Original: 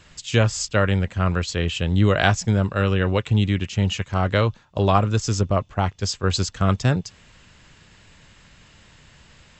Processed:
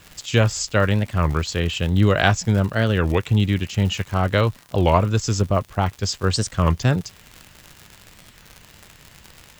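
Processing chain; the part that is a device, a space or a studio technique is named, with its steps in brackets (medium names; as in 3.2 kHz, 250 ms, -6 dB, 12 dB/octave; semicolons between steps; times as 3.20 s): warped LP (warped record 33 1/3 rpm, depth 250 cents; crackle 110 per s -29 dBFS; white noise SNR 39 dB); trim +1 dB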